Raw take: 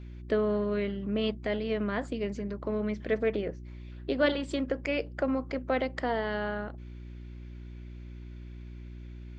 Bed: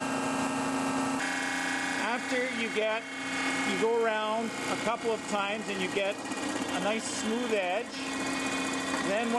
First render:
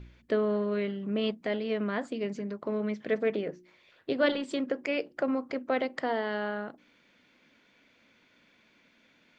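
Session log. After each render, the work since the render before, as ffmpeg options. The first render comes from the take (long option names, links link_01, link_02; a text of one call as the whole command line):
ffmpeg -i in.wav -af "bandreject=frequency=60:width_type=h:width=4,bandreject=frequency=120:width_type=h:width=4,bandreject=frequency=180:width_type=h:width=4,bandreject=frequency=240:width_type=h:width=4,bandreject=frequency=300:width_type=h:width=4,bandreject=frequency=360:width_type=h:width=4" out.wav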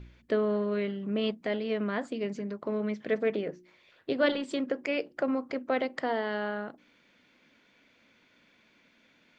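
ffmpeg -i in.wav -af anull out.wav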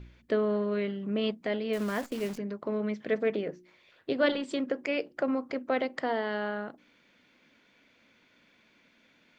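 ffmpeg -i in.wav -filter_complex "[0:a]asettb=1/sr,asplit=3[link_01][link_02][link_03];[link_01]atrim=end=1.734[link_04];[link_02]atrim=start=1.73:end=2.38,asetpts=PTS-STARTPTS,afade=type=in:duration=0.004:curve=qsin,afade=type=out:start_time=0.646:duration=0.004:curve=qsin,acrusher=bits=8:dc=4:mix=0:aa=0.000001[link_05];[link_03]atrim=start=2.376[link_06];[link_04][link_05]acrossfade=duration=0.004:curve1=hsin:curve2=qsin[link_07];[link_07][link_06]acrossfade=duration=0.004:curve1=qsin:curve2=hsin" out.wav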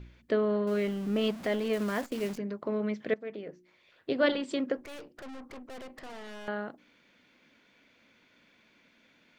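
ffmpeg -i in.wav -filter_complex "[0:a]asettb=1/sr,asplit=3[link_01][link_02][link_03];[link_01]atrim=end=0.674[link_04];[link_02]atrim=start=0.67:end=1.75,asetpts=PTS-STARTPTS,afade=type=in:duration=0.004:curve=qsin,afade=type=out:start_time=1.076:duration=0.004:curve=qsin,aeval=exprs='val(0)+0.5*0.0106*sgn(val(0))':channel_layout=same[link_05];[link_03]atrim=start=1.746[link_06];[link_04][link_05]acrossfade=duration=0.004:curve1=hsin:curve2=qsin[link_07];[link_07][link_06]acrossfade=duration=0.004:curve1=qsin:curve2=hsin,asettb=1/sr,asplit=3[link_08][link_09][link_10];[link_08]atrim=end=4.774[link_11];[link_09]atrim=start=4.77:end=6.48,asetpts=PTS-STARTPTS,afade=type=in:duration=0.004:curve=qsin,afade=type=out:start_time=1.706:duration=0.004:curve=qsin,aeval=exprs='(tanh(141*val(0)+0.45)-tanh(0.45))/141':channel_layout=same[link_12];[link_10]atrim=start=6.476[link_13];[link_11][link_12]acrossfade=duration=0.004:curve1=hsin:curve2=qsin[link_14];[link_14][link_13]acrossfade=duration=0.004:curve1=qsin:curve2=hsin,asplit=2[link_15][link_16];[link_15]atrim=end=3.14,asetpts=PTS-STARTPTS,afade=type=out:start_time=3.136:duration=0.004:curve=hsin:silence=0.149624[link_17];[link_16]atrim=start=3.14,asetpts=PTS-STARTPTS,afade=type=in:duration=1.02:silence=0.149624[link_18];[link_17][link_18]concat=n=2:v=0:a=1" out.wav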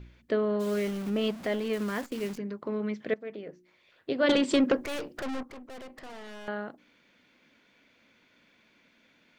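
ffmpeg -i in.wav -filter_complex "[0:a]asplit=3[link_01][link_02][link_03];[link_01]afade=type=out:start_time=0.59:duration=0.02[link_04];[link_02]acrusher=bits=8:dc=4:mix=0:aa=0.000001,afade=type=in:start_time=0.59:duration=0.02,afade=type=out:start_time=1.09:duration=0.02[link_05];[link_03]afade=type=in:start_time=1.09:duration=0.02[link_06];[link_04][link_05][link_06]amix=inputs=3:normalize=0,asettb=1/sr,asplit=3[link_07][link_08][link_09];[link_07]atrim=end=1.614[link_10];[link_08]atrim=start=1.61:end=3.01,asetpts=PTS-STARTPTS,afade=type=in:duration=0.004:curve=qsin,afade=type=out:start_time=1.396:duration=0.004:curve=qsin,equalizer=frequency=640:width_type=o:width=0.43:gain=-5.5[link_11];[link_09]atrim=start=3.006[link_12];[link_10][link_11]acrossfade=duration=0.004:curve1=hsin:curve2=qsin[link_13];[link_13][link_12]acrossfade=duration=0.004:curve1=qsin:curve2=hsin,asettb=1/sr,asplit=3[link_14][link_15][link_16];[link_14]atrim=end=4.294[link_17];[link_15]atrim=start=4.29:end=5.43,asetpts=PTS-STARTPTS,afade=type=in:duration=0.004:curve=qsin,afade=type=out:start_time=1.136:duration=0.004:curve=qsin,aeval=exprs='0.141*sin(PI/2*2*val(0)/0.141)':channel_layout=same[link_18];[link_16]atrim=start=5.426[link_19];[link_17][link_18]acrossfade=duration=0.004:curve1=hsin:curve2=qsin[link_20];[link_20][link_19]acrossfade=duration=0.004:curve1=qsin:curve2=hsin" out.wav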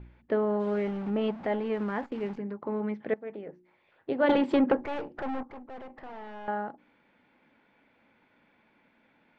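ffmpeg -i in.wav -af "lowpass=2000,equalizer=frequency=840:width_type=o:width=0.22:gain=11" out.wav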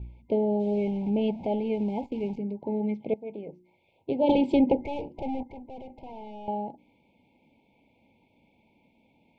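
ffmpeg -i in.wav -af "equalizer=frequency=68:width=0.46:gain=10,afftfilt=real='re*(1-between(b*sr/4096,980,2100))':imag='im*(1-between(b*sr/4096,980,2100))':win_size=4096:overlap=0.75" out.wav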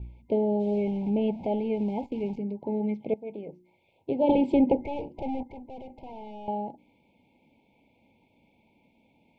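ffmpeg -i in.wav -filter_complex "[0:a]acrossover=split=2700[link_01][link_02];[link_02]acompressor=threshold=-56dB:ratio=4:attack=1:release=60[link_03];[link_01][link_03]amix=inputs=2:normalize=0" out.wav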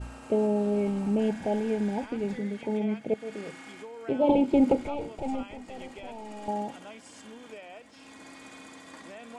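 ffmpeg -i in.wav -i bed.wav -filter_complex "[1:a]volume=-16dB[link_01];[0:a][link_01]amix=inputs=2:normalize=0" out.wav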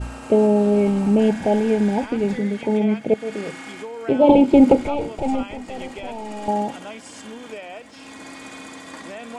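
ffmpeg -i in.wav -af "volume=9.5dB" out.wav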